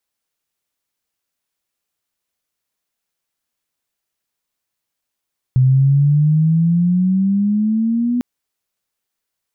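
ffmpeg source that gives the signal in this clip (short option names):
-f lavfi -i "aevalsrc='pow(10,(-8.5-6*t/2.65)/20)*sin(2*PI*127*2.65/(11.5*log(2)/12)*(exp(11.5*log(2)/12*t/2.65)-1))':d=2.65:s=44100"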